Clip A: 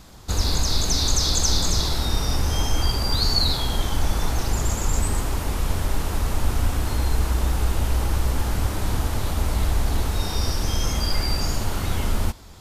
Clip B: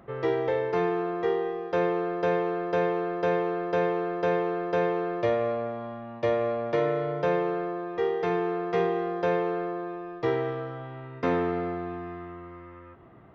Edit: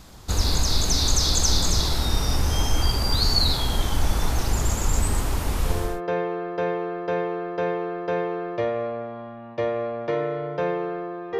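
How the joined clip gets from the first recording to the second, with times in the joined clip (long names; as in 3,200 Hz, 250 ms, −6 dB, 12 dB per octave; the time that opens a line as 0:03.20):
clip A
0:05.81: continue with clip B from 0:02.46, crossfade 0.40 s equal-power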